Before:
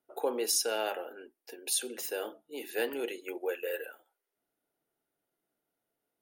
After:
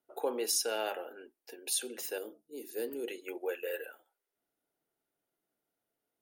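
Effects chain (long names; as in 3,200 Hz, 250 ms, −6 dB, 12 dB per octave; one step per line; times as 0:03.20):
0:02.18–0:03.08: flat-topped bell 1,500 Hz −13 dB 2.8 octaves
level −2 dB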